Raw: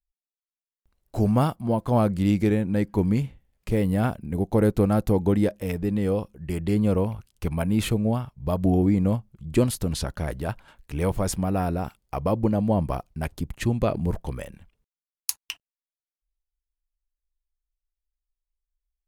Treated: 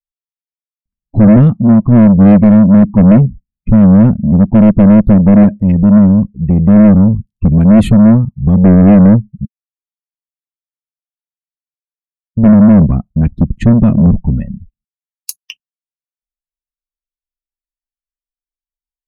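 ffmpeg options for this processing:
-filter_complex "[0:a]asplit=3[s0][s1][s2];[s0]atrim=end=9.45,asetpts=PTS-STARTPTS,afade=t=out:st=9.446:d=0.004:c=hsin[s3];[s1]atrim=start=9.45:end=12.37,asetpts=PTS-STARTPTS,volume=0[s4];[s2]atrim=start=12.37,asetpts=PTS-STARTPTS,afade=t=in:d=0.004:c=hsin[s5];[s3][s4][s5]concat=n=3:v=0:a=1,afftdn=nr=34:nf=-36,lowshelf=f=320:t=q:w=3:g=13,acontrast=80,volume=0.891"

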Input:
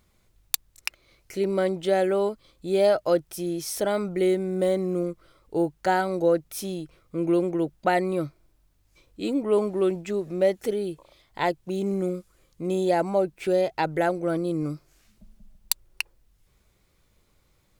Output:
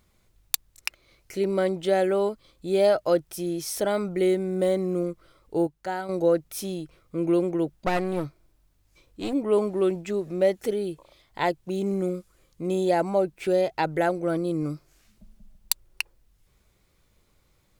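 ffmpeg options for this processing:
-filter_complex "[0:a]asettb=1/sr,asplit=3[s0][s1][s2];[s0]atrim=end=7.734[s3];[s1]atrim=start=7.73:end=9.33,asetpts=PTS-STARTPTS,afade=t=in:d=0.004:c=qsin,afade=t=out:st=1.596:d=0.004:c=qsin,aeval=exprs='clip(val(0),-1,0.0266)':c=same[s4];[s2]atrim=start=9.326[s5];[s3][s4]acrossfade=d=0.004:c1=hsin:c2=qsin[s6];[s6][s5]acrossfade=d=0.004:c1=qsin:c2=hsin,asplit=3[s7][s8][s9];[s7]atrim=end=5.672[s10];[s8]atrim=start=5.668:end=6.092,asetpts=PTS-STARTPTS,volume=0.398[s11];[s9]atrim=start=6.088[s12];[s10][s11]acrossfade=d=0.004:c1=hsin:c2=hsin[s13];[s13][s12]acrossfade=d=0.004:c1=hsin:c2=hsin"

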